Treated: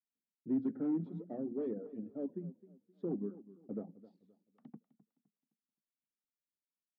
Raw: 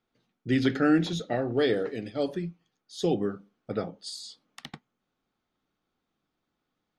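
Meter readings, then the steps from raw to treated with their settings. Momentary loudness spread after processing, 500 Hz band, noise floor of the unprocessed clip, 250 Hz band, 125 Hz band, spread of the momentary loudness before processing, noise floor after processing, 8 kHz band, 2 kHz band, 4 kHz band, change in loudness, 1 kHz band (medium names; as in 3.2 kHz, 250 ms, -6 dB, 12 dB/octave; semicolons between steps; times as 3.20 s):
19 LU, -14.0 dB, -83 dBFS, -9.5 dB, -14.0 dB, 21 LU, under -85 dBFS, under -30 dB, under -35 dB, under -40 dB, -11.0 dB, -21.5 dB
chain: local Wiener filter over 9 samples; hum notches 60/120/180/240 Hz; reverb removal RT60 0.9 s; gate with hold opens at -59 dBFS; in parallel at -8 dB: sine folder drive 9 dB, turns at -13 dBFS; on the sum: ladder band-pass 260 Hz, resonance 50%; modulated delay 259 ms, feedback 33%, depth 116 cents, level -17.5 dB; trim -5.5 dB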